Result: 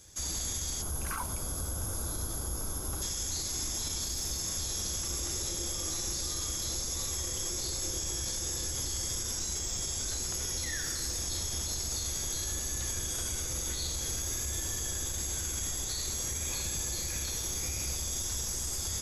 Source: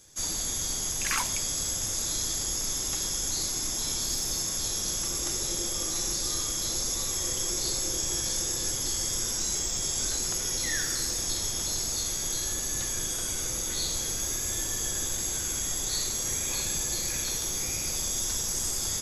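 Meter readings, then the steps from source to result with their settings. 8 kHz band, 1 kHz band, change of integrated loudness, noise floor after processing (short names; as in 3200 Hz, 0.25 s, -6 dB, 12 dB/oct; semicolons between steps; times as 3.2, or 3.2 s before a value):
-5.0 dB, -4.0 dB, -5.0 dB, -36 dBFS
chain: spectral gain 0.82–3.03, 1600–8600 Hz -13 dB; bell 70 Hz +12 dB 0.75 oct; limiter -25 dBFS, peak gain reduction 9 dB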